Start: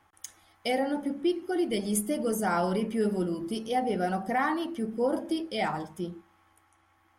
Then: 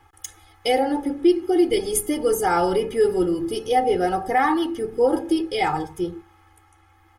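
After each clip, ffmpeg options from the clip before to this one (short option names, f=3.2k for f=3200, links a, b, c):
-af "lowshelf=f=140:g=9,aecho=1:1:2.4:0.95,volume=4.5dB"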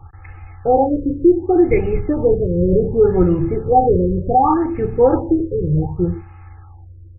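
-af "lowshelf=f=190:t=q:w=1.5:g=11.5,afftfilt=real='re*lt(b*sr/1024,530*pow(2900/530,0.5+0.5*sin(2*PI*0.67*pts/sr)))':imag='im*lt(b*sr/1024,530*pow(2900/530,0.5+0.5*sin(2*PI*0.67*pts/sr)))':win_size=1024:overlap=0.75,volume=7.5dB"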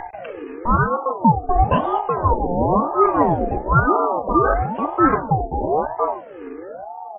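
-af "acompressor=mode=upward:threshold=-21dB:ratio=2.5,aeval=exprs='val(0)*sin(2*PI*590*n/s+590*0.4/1*sin(2*PI*1*n/s))':c=same"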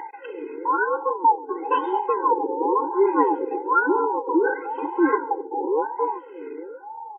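-af "aecho=1:1:135|270:0.0631|0.0202,afftfilt=real='re*eq(mod(floor(b*sr/1024/270),2),1)':imag='im*eq(mod(floor(b*sr/1024/270),2),1)':win_size=1024:overlap=0.75"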